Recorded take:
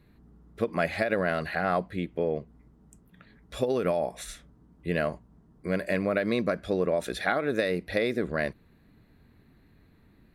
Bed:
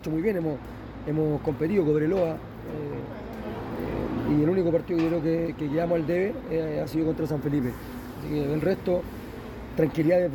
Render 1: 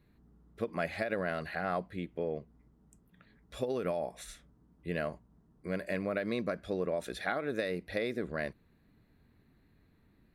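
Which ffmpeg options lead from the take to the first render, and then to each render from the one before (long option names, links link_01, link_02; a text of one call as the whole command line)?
ffmpeg -i in.wav -af "volume=-7dB" out.wav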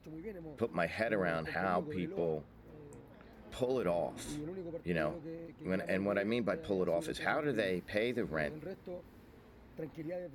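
ffmpeg -i in.wav -i bed.wav -filter_complex "[1:a]volume=-20dB[link_01];[0:a][link_01]amix=inputs=2:normalize=0" out.wav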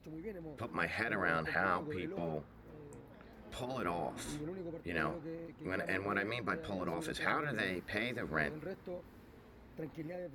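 ffmpeg -i in.wav -af "afftfilt=real='re*lt(hypot(re,im),0.112)':imag='im*lt(hypot(re,im),0.112)':win_size=1024:overlap=0.75,adynamicequalizer=threshold=0.00251:dfrequency=1300:dqfactor=1.4:tfrequency=1300:tqfactor=1.4:attack=5:release=100:ratio=0.375:range=3:mode=boostabove:tftype=bell" out.wav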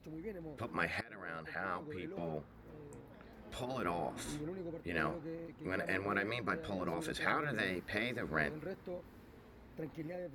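ffmpeg -i in.wav -filter_complex "[0:a]asplit=2[link_01][link_02];[link_01]atrim=end=1.01,asetpts=PTS-STARTPTS,afade=type=out:start_time=1.006:duration=0.004:curve=hsin:silence=0.112202[link_03];[link_02]atrim=start=1.01,asetpts=PTS-STARTPTS,afade=type=in:duration=1.63:silence=0.112202[link_04];[link_03][link_04]concat=n=2:v=0:a=1" out.wav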